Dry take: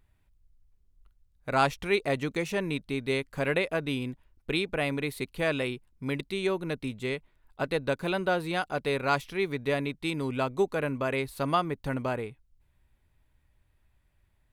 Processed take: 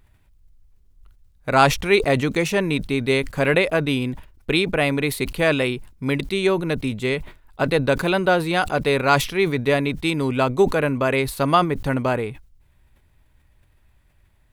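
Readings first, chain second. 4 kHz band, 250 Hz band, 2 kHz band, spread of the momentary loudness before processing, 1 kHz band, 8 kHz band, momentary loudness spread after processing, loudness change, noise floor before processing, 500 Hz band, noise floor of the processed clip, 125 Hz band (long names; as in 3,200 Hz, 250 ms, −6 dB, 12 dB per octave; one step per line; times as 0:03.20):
+9.5 dB, +9.5 dB, +9.0 dB, 7 LU, +9.0 dB, +12.5 dB, 7 LU, +9.5 dB, −69 dBFS, +9.0 dB, −59 dBFS, +10.0 dB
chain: level that may fall only so fast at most 120 dB per second
level +9 dB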